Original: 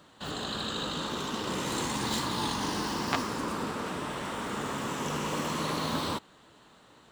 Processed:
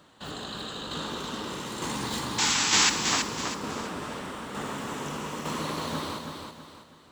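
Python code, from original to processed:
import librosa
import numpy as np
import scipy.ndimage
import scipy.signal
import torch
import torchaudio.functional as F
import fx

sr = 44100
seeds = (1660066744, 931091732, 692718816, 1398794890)

y = fx.spec_paint(x, sr, seeds[0], shape='noise', start_s=2.38, length_s=0.52, low_hz=740.0, high_hz=7900.0, level_db=-21.0)
y = fx.tremolo_shape(y, sr, shape='saw_down', hz=1.1, depth_pct=50)
y = fx.echo_feedback(y, sr, ms=325, feedback_pct=37, wet_db=-5.5)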